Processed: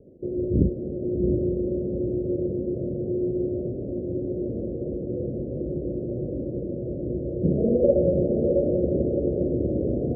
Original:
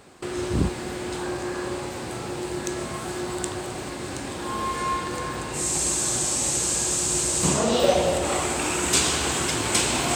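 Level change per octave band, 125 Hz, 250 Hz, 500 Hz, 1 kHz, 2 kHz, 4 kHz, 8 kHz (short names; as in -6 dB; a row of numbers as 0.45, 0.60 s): +4.0 dB, +4.5 dB, +3.5 dB, under -20 dB, under -40 dB, under -40 dB, under -40 dB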